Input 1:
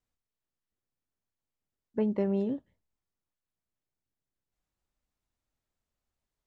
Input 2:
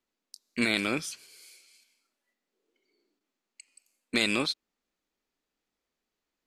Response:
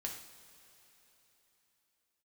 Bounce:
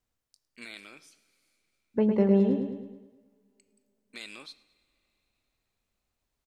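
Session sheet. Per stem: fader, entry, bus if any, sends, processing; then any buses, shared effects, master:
+3.0 dB, 0.00 s, send −16 dB, echo send −5 dB, no processing
−17.0 dB, 0.00 s, send −10.5 dB, echo send −22.5 dB, downward expander −59 dBFS; low-shelf EQ 460 Hz −10 dB; automatic ducking −16 dB, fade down 1.25 s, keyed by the first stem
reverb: on, pre-delay 3 ms
echo: repeating echo 107 ms, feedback 51%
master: no processing

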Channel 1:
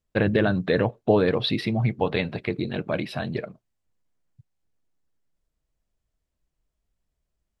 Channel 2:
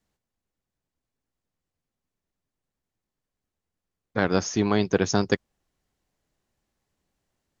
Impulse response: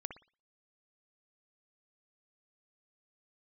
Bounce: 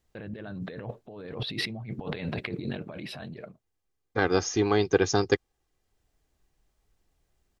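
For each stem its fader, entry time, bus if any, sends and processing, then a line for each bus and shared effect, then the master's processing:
−2.5 dB, 0.00 s, no send, compressor whose output falls as the input rises −33 dBFS, ratio −1; automatic ducking −19 dB, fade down 1.65 s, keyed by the second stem
−2.0 dB, 0.00 s, no send, comb filter 2.5 ms, depth 58%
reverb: not used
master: no processing

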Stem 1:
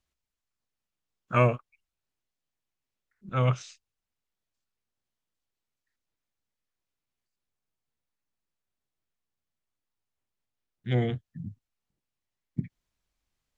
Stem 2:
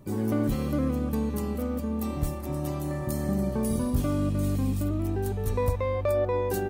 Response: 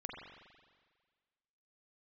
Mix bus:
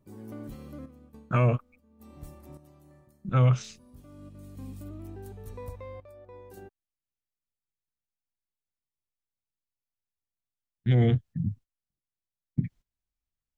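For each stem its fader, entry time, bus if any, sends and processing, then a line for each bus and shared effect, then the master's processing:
+2.5 dB, 0.00 s, no send, noise gate −53 dBFS, range −18 dB; low-shelf EQ 240 Hz +9.5 dB
−13.5 dB, 0.00 s, no send, sample-and-hold tremolo, depth 75%; automatic ducking −16 dB, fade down 0.25 s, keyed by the first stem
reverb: not used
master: brickwall limiter −14 dBFS, peak gain reduction 10 dB

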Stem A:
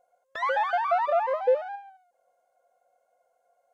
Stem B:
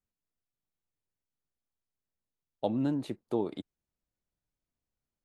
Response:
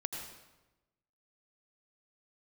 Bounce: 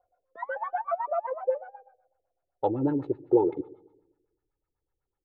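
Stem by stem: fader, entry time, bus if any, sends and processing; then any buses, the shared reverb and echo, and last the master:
−9.0 dB, 0.00 s, send −20 dB, elliptic high-pass filter 170 Hz; automatic ducking −17 dB, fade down 1.15 s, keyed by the second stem
+0.5 dB, 0.00 s, send −16 dB, comb filter 2.3 ms, depth 84%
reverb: on, RT60 1.1 s, pre-delay 76 ms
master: auto-filter low-pass sine 8 Hz 340–1,600 Hz

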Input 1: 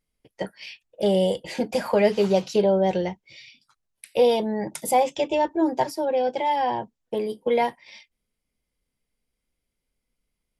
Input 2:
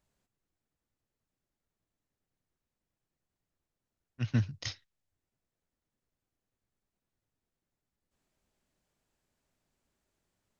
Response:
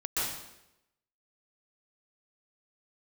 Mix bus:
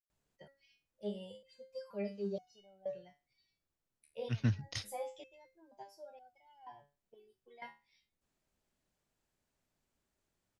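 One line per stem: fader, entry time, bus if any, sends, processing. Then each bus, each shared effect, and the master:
−9.5 dB, 0.00 s, no send, spectral dynamics exaggerated over time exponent 1.5; step-sequenced resonator 2.1 Hz 75–730 Hz
−3.0 dB, 0.10 s, no send, no processing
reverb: not used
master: no processing

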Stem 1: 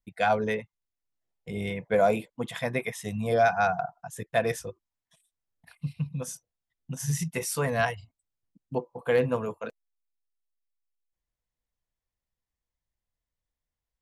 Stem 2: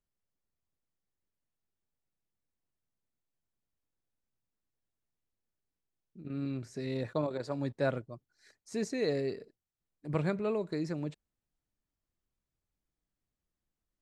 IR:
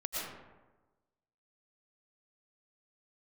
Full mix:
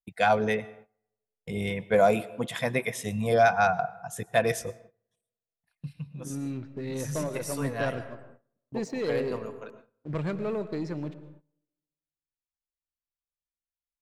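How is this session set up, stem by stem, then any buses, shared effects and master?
+1.0 dB, 0.00 s, send −22 dB, high-shelf EQ 5,200 Hz +7.5 dB; automatic ducking −10 dB, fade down 1.30 s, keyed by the second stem
−6.0 dB, 0.00 s, send −14.5 dB, low-pass that shuts in the quiet parts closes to 370 Hz, open at −28.5 dBFS; leveller curve on the samples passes 2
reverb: on, RT60 1.2 s, pre-delay 75 ms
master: noise gate −51 dBFS, range −19 dB; high-shelf EQ 7,200 Hz −6 dB

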